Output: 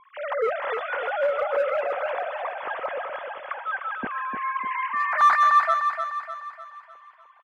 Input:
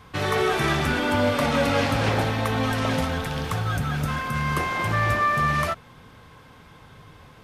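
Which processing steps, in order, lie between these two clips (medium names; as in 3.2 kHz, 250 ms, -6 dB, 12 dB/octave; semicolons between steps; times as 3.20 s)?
formants replaced by sine waves; low-pass 2.1 kHz 12 dB/octave; bass shelf 290 Hz +3.5 dB; in parallel at -6.5 dB: hard clipper -18.5 dBFS, distortion -8 dB; on the sum: feedback delay 301 ms, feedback 47%, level -6.5 dB; trim -5 dB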